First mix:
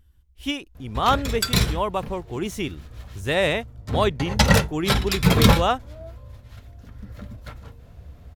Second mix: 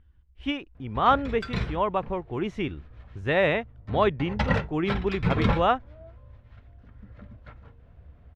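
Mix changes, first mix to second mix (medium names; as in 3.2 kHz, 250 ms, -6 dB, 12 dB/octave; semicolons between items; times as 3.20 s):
background -7.0 dB; master: add Chebyshev low-pass 2.1 kHz, order 2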